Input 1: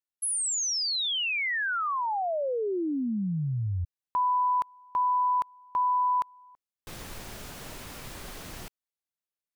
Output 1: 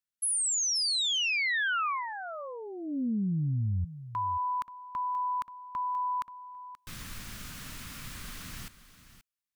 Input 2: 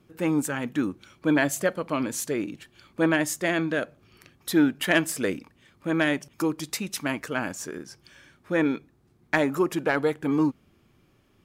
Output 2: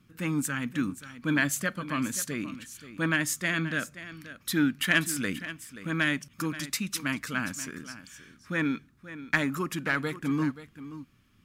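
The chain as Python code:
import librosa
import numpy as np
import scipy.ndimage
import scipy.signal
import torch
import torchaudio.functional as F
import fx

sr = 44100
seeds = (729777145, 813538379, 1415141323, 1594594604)

y = fx.band_shelf(x, sr, hz=550.0, db=-12.0, octaves=1.7)
y = y + 10.0 ** (-14.0 / 20.0) * np.pad(y, (int(530 * sr / 1000.0), 0))[:len(y)]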